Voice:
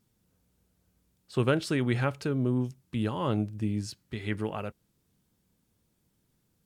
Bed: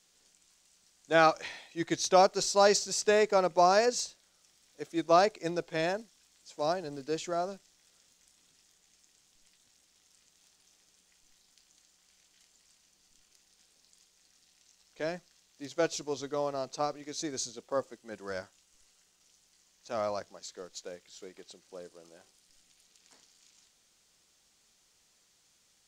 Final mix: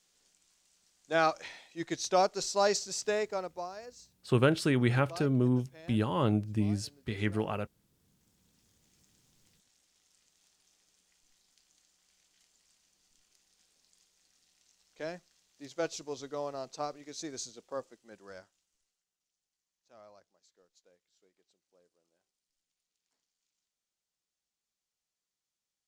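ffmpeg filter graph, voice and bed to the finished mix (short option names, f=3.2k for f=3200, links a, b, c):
-filter_complex "[0:a]adelay=2950,volume=0.5dB[a];[1:a]volume=12.5dB,afade=t=out:st=2.96:d=0.76:silence=0.141254,afade=t=in:st=7.95:d=1.02:silence=0.149624,afade=t=out:st=17.37:d=1.66:silence=0.11885[b];[a][b]amix=inputs=2:normalize=0"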